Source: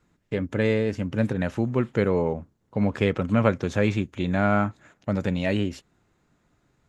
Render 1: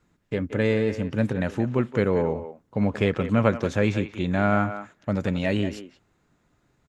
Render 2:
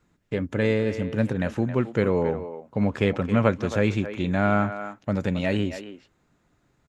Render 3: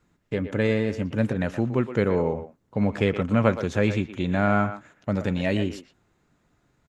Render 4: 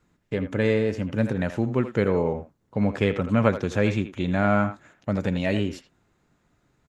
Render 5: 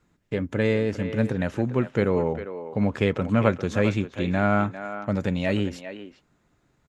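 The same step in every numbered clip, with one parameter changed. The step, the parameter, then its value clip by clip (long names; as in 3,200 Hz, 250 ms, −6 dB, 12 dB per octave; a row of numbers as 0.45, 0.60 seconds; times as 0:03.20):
far-end echo of a speakerphone, delay time: 180, 270, 120, 80, 400 milliseconds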